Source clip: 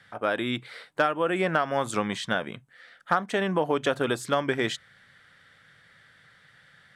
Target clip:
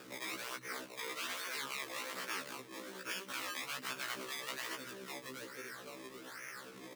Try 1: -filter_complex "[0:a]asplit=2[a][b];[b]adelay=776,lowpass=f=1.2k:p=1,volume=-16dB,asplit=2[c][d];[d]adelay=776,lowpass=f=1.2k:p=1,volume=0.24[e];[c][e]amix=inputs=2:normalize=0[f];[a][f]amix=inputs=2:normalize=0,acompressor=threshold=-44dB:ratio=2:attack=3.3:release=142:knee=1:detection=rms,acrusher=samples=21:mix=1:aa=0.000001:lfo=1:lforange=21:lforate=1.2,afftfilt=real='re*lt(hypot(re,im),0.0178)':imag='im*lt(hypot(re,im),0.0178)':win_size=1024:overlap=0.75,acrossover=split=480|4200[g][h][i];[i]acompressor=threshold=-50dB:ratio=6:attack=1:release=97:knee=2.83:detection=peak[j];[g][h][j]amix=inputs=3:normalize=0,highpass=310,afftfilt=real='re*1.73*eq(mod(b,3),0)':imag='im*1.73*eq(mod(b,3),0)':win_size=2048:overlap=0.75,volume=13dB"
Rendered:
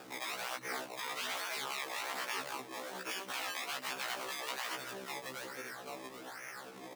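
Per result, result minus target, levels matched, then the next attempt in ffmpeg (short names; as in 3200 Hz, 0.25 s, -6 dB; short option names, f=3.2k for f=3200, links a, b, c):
compressor: peak gain reduction -3.5 dB; 1000 Hz band +2.5 dB
-filter_complex "[0:a]asplit=2[a][b];[b]adelay=776,lowpass=f=1.2k:p=1,volume=-16dB,asplit=2[c][d];[d]adelay=776,lowpass=f=1.2k:p=1,volume=0.24[e];[c][e]amix=inputs=2:normalize=0[f];[a][f]amix=inputs=2:normalize=0,acompressor=threshold=-51dB:ratio=2:attack=3.3:release=142:knee=1:detection=rms,acrusher=samples=21:mix=1:aa=0.000001:lfo=1:lforange=21:lforate=1.2,afftfilt=real='re*lt(hypot(re,im),0.0178)':imag='im*lt(hypot(re,im),0.0178)':win_size=1024:overlap=0.75,acrossover=split=480|4200[g][h][i];[i]acompressor=threshold=-50dB:ratio=6:attack=1:release=97:knee=2.83:detection=peak[j];[g][h][j]amix=inputs=3:normalize=0,highpass=310,afftfilt=real='re*1.73*eq(mod(b,3),0)':imag='im*1.73*eq(mod(b,3),0)':win_size=2048:overlap=0.75,volume=13dB"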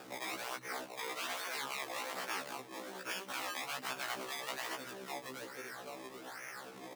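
1000 Hz band +3.0 dB
-filter_complex "[0:a]asplit=2[a][b];[b]adelay=776,lowpass=f=1.2k:p=1,volume=-16dB,asplit=2[c][d];[d]adelay=776,lowpass=f=1.2k:p=1,volume=0.24[e];[c][e]amix=inputs=2:normalize=0[f];[a][f]amix=inputs=2:normalize=0,acompressor=threshold=-51dB:ratio=2:attack=3.3:release=142:knee=1:detection=rms,acrusher=samples=21:mix=1:aa=0.000001:lfo=1:lforange=21:lforate=1.2,afftfilt=real='re*lt(hypot(re,im),0.0178)':imag='im*lt(hypot(re,im),0.0178)':win_size=1024:overlap=0.75,acrossover=split=480|4200[g][h][i];[i]acompressor=threshold=-50dB:ratio=6:attack=1:release=97:knee=2.83:detection=peak[j];[g][h][j]amix=inputs=3:normalize=0,highpass=310,equalizer=f=760:t=o:w=0.5:g=-12,afftfilt=real='re*1.73*eq(mod(b,3),0)':imag='im*1.73*eq(mod(b,3),0)':win_size=2048:overlap=0.75,volume=13dB"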